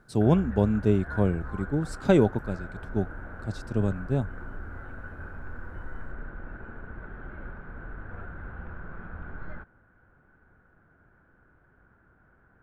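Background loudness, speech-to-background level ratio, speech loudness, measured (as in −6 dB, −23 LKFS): −41.5 LKFS, 15.0 dB, −26.5 LKFS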